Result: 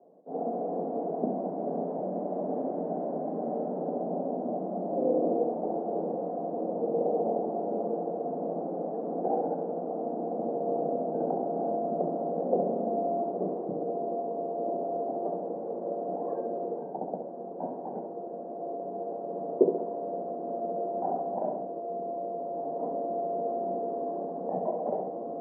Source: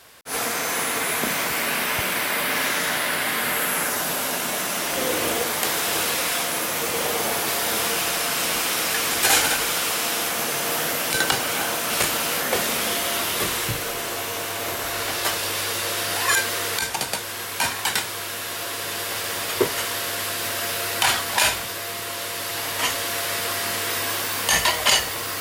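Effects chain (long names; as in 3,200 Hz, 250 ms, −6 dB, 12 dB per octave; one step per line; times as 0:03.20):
Chebyshev band-pass filter 170–730 Hz, order 4
on a send: flutter between parallel walls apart 11.7 metres, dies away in 0.63 s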